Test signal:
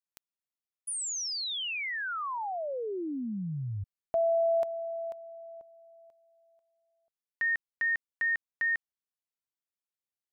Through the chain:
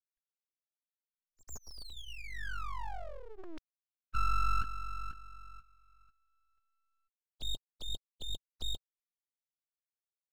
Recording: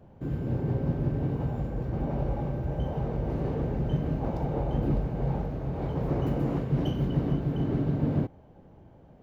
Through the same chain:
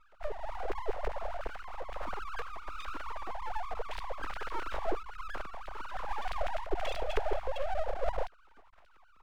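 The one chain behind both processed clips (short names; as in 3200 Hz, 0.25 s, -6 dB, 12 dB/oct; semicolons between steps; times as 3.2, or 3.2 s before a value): sine-wave speech; dynamic EQ 2200 Hz, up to +3 dB, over -46 dBFS, Q 6.7; full-wave rectifier; gain -4 dB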